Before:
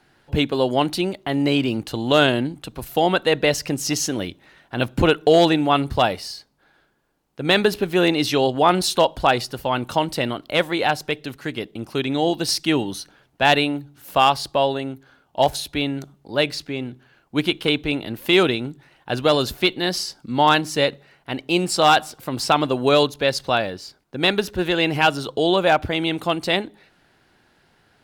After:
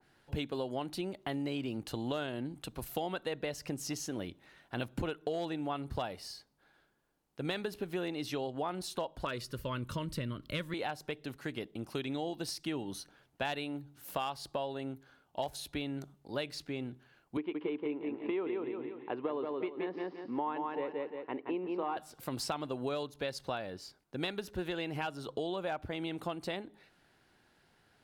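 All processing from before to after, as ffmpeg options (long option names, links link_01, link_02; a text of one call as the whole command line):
ffmpeg -i in.wav -filter_complex "[0:a]asettb=1/sr,asplit=3[link_01][link_02][link_03];[link_01]atrim=end=9.254[link_04];[link_02]atrim=start=9.25:end=10.74,asetpts=PTS-STARTPTS,afade=type=in:duration=0.004:curve=qsin,afade=type=out:start_time=1.486:duration=0.004:curve=qsin,asubboost=boost=11:cutoff=180,asuperstop=centerf=770:order=4:qfactor=2.1[link_05];[link_03]atrim=start=10.736[link_06];[link_04][link_05]acrossfade=duration=0.004:curve1=hsin:curve2=qsin[link_07];[link_07][link_06]acrossfade=duration=0.004:curve1=qsin:curve2=hsin,asettb=1/sr,asplit=3[link_08][link_09][link_10];[link_08]atrim=end=17.374[link_11];[link_09]atrim=start=17.37:end=21.97,asetpts=PTS-STARTPTS,afade=type=in:duration=0.004:curve=qsin,afade=type=out:start_time=4.596:duration=0.004:curve=qsin,highpass=280,equalizer=frequency=300:width_type=q:width=4:gain=6,equalizer=frequency=420:width_type=q:width=4:gain=7,equalizer=frequency=650:width_type=q:width=4:gain=-4,equalizer=frequency=1000:width_type=q:width=4:gain=7,equalizer=frequency=1500:width_type=q:width=4:gain=-8,lowpass=frequency=2200:width=0.5412,lowpass=frequency=2200:width=1.3066,aecho=1:1:174|348|522|696:0.596|0.185|0.0572|0.0177,atrim=end_sample=202860[link_12];[link_10]atrim=start=21.966[link_13];[link_11][link_12]acrossfade=duration=0.004:curve1=hsin:curve2=qsin[link_14];[link_14][link_13]acrossfade=duration=0.004:curve1=qsin:curve2=hsin,equalizer=frequency=11000:width=0.63:gain=3,acompressor=threshold=-24dB:ratio=6,adynamicequalizer=threshold=0.00708:dfrequency=2000:dqfactor=0.7:tfrequency=2000:tqfactor=0.7:attack=5:release=100:ratio=0.375:range=3:mode=cutabove:tftype=highshelf,volume=-9dB" out.wav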